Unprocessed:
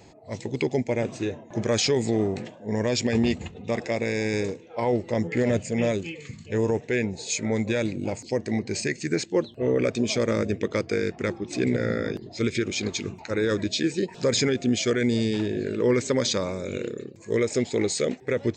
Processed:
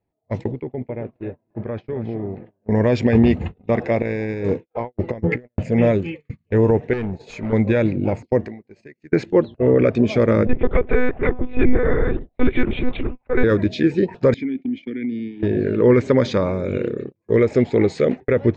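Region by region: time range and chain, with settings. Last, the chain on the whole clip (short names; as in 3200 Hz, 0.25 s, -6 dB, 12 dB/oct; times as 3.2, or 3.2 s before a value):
0.51–2.69 compressor 2.5:1, threshold -36 dBFS + air absorption 290 m + echo 0.269 s -10.5 dB
4.02–5.64 negative-ratio compressor -30 dBFS, ratio -0.5 + expander -33 dBFS
6.93–7.53 compressor 1.5:1, threshold -33 dBFS + hard clip -30 dBFS
8.45–9.13 HPF 170 Hz 6 dB/oct + compressor 5:1, threshold -36 dBFS
10.47–13.44 steep high-pass 160 Hz + monotone LPC vocoder at 8 kHz 250 Hz
14.34–15.43 vowel filter i + compressor 3:1, threshold -29 dBFS
whole clip: gate -36 dBFS, range -36 dB; LPF 1900 Hz 12 dB/oct; low shelf 78 Hz +9 dB; gain +7.5 dB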